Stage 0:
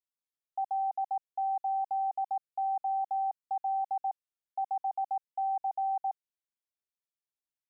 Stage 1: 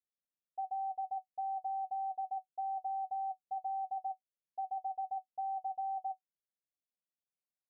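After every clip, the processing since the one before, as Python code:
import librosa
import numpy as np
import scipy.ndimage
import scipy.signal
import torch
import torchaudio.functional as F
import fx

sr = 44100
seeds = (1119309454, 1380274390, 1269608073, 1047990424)

y = scipy.signal.sosfilt(scipy.signal.cheby1(6, 9, 780.0, 'lowpass', fs=sr, output='sos'), x)
y = y * librosa.db_to_amplitude(1.0)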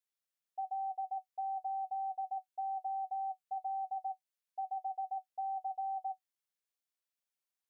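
y = fx.low_shelf(x, sr, hz=480.0, db=-11.5)
y = y * librosa.db_to_amplitude(3.0)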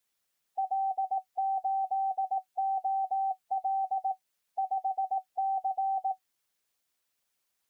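y = fx.hpss(x, sr, part='percussive', gain_db=7)
y = y * librosa.db_to_amplitude(7.5)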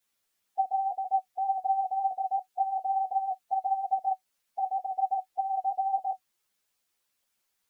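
y = fx.ensemble(x, sr)
y = y * librosa.db_to_amplitude(5.0)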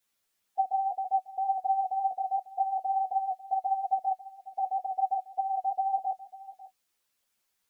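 y = x + 10.0 ** (-17.5 / 20.0) * np.pad(x, (int(546 * sr / 1000.0), 0))[:len(x)]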